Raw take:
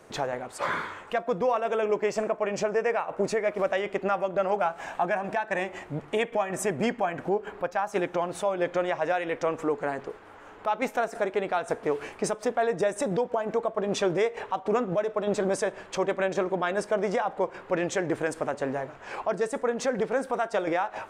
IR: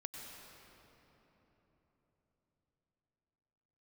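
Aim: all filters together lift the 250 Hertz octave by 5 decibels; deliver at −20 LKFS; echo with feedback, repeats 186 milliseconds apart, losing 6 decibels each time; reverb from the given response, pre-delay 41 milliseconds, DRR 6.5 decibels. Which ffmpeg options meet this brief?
-filter_complex "[0:a]equalizer=frequency=250:width_type=o:gain=7,aecho=1:1:186|372|558|744|930|1116:0.501|0.251|0.125|0.0626|0.0313|0.0157,asplit=2[link_01][link_02];[1:a]atrim=start_sample=2205,adelay=41[link_03];[link_02][link_03]afir=irnorm=-1:irlink=0,volume=-4.5dB[link_04];[link_01][link_04]amix=inputs=2:normalize=0,volume=4.5dB"

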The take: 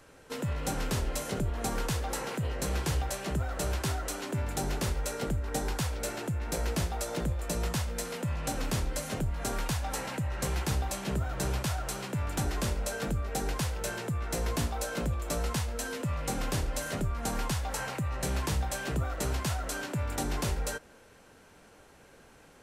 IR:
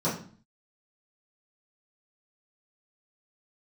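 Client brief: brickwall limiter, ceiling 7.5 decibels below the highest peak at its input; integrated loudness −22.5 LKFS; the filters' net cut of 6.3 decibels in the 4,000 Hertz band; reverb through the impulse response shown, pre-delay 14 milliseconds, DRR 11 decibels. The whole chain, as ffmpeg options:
-filter_complex "[0:a]equalizer=frequency=4000:width_type=o:gain=-8.5,alimiter=level_in=5dB:limit=-24dB:level=0:latency=1,volume=-5dB,asplit=2[link_01][link_02];[1:a]atrim=start_sample=2205,adelay=14[link_03];[link_02][link_03]afir=irnorm=-1:irlink=0,volume=-21.5dB[link_04];[link_01][link_04]amix=inputs=2:normalize=0,volume=14.5dB"

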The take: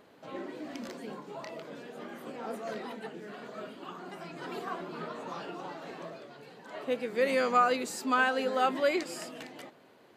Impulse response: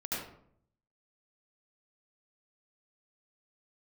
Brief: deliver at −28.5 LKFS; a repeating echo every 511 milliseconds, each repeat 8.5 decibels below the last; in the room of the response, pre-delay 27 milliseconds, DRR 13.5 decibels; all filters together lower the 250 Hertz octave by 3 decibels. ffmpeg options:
-filter_complex "[0:a]equalizer=frequency=250:width_type=o:gain=-3.5,aecho=1:1:511|1022|1533|2044:0.376|0.143|0.0543|0.0206,asplit=2[link_01][link_02];[1:a]atrim=start_sample=2205,adelay=27[link_03];[link_02][link_03]afir=irnorm=-1:irlink=0,volume=-17.5dB[link_04];[link_01][link_04]amix=inputs=2:normalize=0,volume=4dB"

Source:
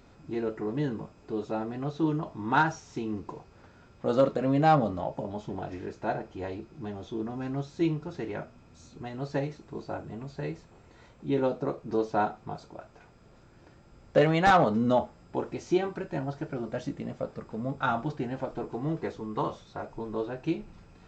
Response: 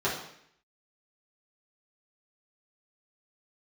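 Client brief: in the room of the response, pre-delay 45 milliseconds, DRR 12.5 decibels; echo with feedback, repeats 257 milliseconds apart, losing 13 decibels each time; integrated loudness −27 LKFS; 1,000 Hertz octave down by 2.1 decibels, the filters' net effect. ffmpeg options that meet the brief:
-filter_complex "[0:a]equalizer=frequency=1000:width_type=o:gain=-3,aecho=1:1:257|514|771:0.224|0.0493|0.0108,asplit=2[link_01][link_02];[1:a]atrim=start_sample=2205,adelay=45[link_03];[link_02][link_03]afir=irnorm=-1:irlink=0,volume=-24dB[link_04];[link_01][link_04]amix=inputs=2:normalize=0,volume=3.5dB"

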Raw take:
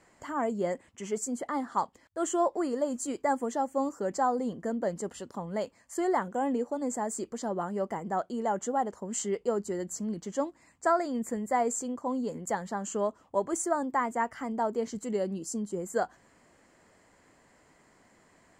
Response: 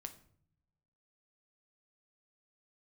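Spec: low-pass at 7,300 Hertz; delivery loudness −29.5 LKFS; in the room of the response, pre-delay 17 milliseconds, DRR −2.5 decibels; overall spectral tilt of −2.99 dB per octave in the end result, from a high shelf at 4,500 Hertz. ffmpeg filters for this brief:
-filter_complex "[0:a]lowpass=7300,highshelf=frequency=4500:gain=-6.5,asplit=2[link_01][link_02];[1:a]atrim=start_sample=2205,adelay=17[link_03];[link_02][link_03]afir=irnorm=-1:irlink=0,volume=7dB[link_04];[link_01][link_04]amix=inputs=2:normalize=0,volume=-2dB"

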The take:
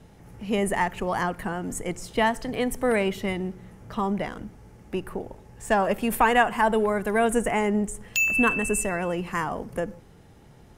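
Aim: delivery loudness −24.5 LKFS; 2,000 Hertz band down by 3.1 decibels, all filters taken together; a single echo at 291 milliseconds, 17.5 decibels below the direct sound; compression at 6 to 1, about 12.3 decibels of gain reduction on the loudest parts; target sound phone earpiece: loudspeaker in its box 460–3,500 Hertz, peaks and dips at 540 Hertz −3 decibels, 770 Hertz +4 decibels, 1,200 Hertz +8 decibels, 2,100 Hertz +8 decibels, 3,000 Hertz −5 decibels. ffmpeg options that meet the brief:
ffmpeg -i in.wav -af "equalizer=frequency=2000:width_type=o:gain=-7.5,acompressor=threshold=-31dB:ratio=6,highpass=460,equalizer=frequency=540:width_type=q:width=4:gain=-3,equalizer=frequency=770:width_type=q:width=4:gain=4,equalizer=frequency=1200:width_type=q:width=4:gain=8,equalizer=frequency=2100:width_type=q:width=4:gain=8,equalizer=frequency=3000:width_type=q:width=4:gain=-5,lowpass=frequency=3500:width=0.5412,lowpass=frequency=3500:width=1.3066,aecho=1:1:291:0.133,volume=12dB" out.wav

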